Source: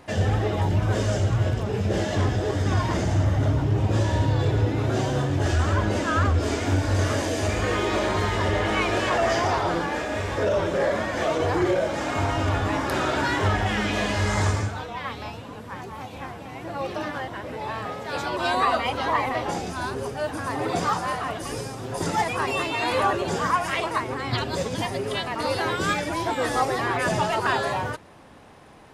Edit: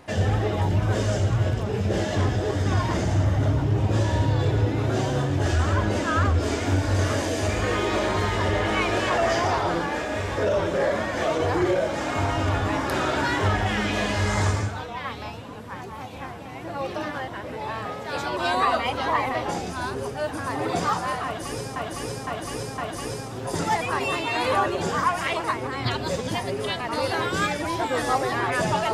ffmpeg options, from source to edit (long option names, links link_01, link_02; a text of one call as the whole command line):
ffmpeg -i in.wav -filter_complex "[0:a]asplit=4[link_01][link_02][link_03][link_04];[link_01]atrim=end=21.762[link_05];[link_02]atrim=start=21.248:end=21.762[link_06];[link_03]atrim=start=21.248:end=21.762[link_07];[link_04]atrim=start=21.248[link_08];[link_05][link_06]acrossfade=duration=0.004:curve1=hsin:curve2=hsin[link_09];[link_09][link_07]acrossfade=duration=0.004:curve1=hsin:curve2=hsin[link_10];[link_10][link_08]acrossfade=duration=0.004:curve1=hsin:curve2=hsin" out.wav